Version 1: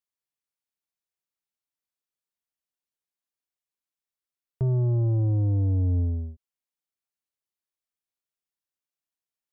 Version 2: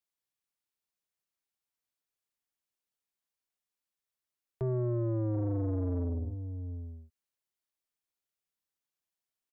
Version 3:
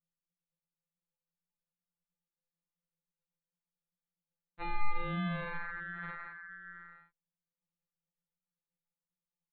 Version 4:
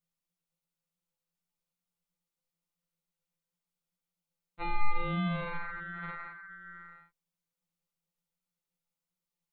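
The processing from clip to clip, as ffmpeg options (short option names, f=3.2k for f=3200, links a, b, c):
-filter_complex "[0:a]aecho=1:1:733:0.188,acrossover=split=290[a][b];[a]asoftclip=type=tanh:threshold=-32dB[c];[c][b]amix=inputs=2:normalize=0"
-af "aresample=8000,acrusher=samples=22:mix=1:aa=0.000001,aresample=44100,afftfilt=real='re*2.83*eq(mod(b,8),0)':imag='im*2.83*eq(mod(b,8),0)':win_size=2048:overlap=0.75,volume=3.5dB"
-af "bandreject=f=1.7k:w=8.2,volume=3.5dB"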